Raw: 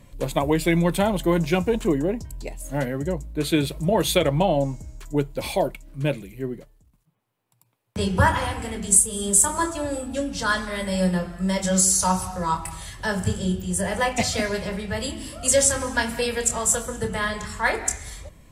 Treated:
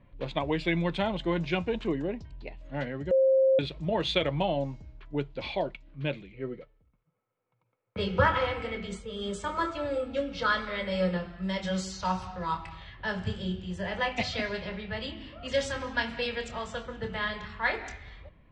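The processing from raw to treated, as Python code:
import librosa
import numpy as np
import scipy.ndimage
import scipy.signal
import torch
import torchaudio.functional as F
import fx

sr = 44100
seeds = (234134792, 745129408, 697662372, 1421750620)

y = fx.small_body(x, sr, hz=(500.0, 1300.0, 2200.0), ring_ms=45, db=13, at=(6.34, 11.17))
y = fx.edit(y, sr, fx.bleep(start_s=3.11, length_s=0.48, hz=531.0, db=-10.5), tone=tone)
y = scipy.signal.sosfilt(scipy.signal.butter(4, 3700.0, 'lowpass', fs=sr, output='sos'), y)
y = fx.env_lowpass(y, sr, base_hz=1600.0, full_db=-19.5)
y = fx.high_shelf(y, sr, hz=2700.0, db=11.5)
y = y * 10.0 ** (-8.5 / 20.0)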